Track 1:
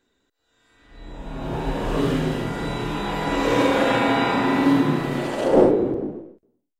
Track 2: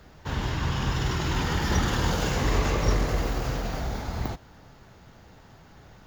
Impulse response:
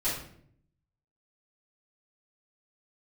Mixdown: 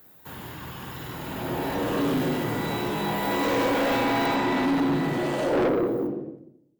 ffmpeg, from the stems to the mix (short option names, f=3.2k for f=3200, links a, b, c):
-filter_complex "[0:a]volume=-3.5dB,asplit=2[a][b];[b]volume=-8.5dB[c];[1:a]acrossover=split=4200[d][e];[e]acompressor=threshold=-50dB:ratio=4:attack=1:release=60[f];[d][f]amix=inputs=2:normalize=0,aexciter=amount=14.9:drive=6.3:freq=8.7k,volume=-8dB,asplit=2[g][h];[h]volume=-20dB[i];[2:a]atrim=start_sample=2205[j];[c][i]amix=inputs=2:normalize=0[k];[k][j]afir=irnorm=-1:irlink=0[l];[a][g][l]amix=inputs=3:normalize=0,highpass=140,asoftclip=type=tanh:threshold=-19.5dB"